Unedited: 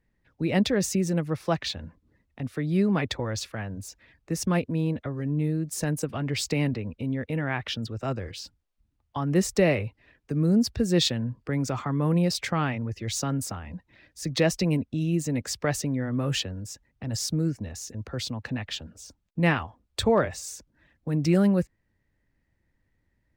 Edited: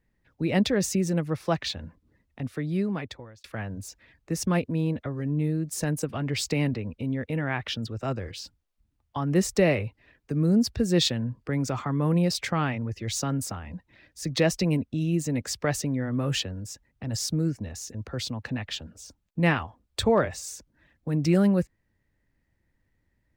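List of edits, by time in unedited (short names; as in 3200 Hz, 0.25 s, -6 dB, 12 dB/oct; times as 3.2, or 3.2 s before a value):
2.45–3.44 fade out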